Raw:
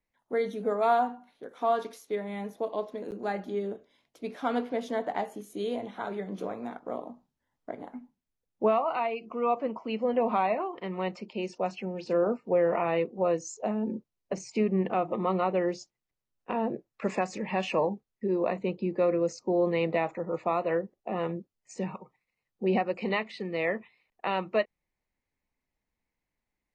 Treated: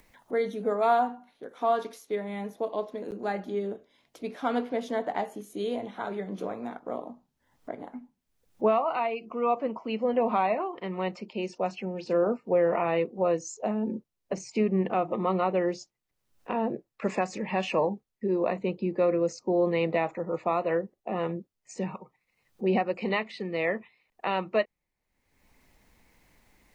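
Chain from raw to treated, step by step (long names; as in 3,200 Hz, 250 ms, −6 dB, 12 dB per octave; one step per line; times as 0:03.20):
upward compression, threshold −44 dBFS
level +1 dB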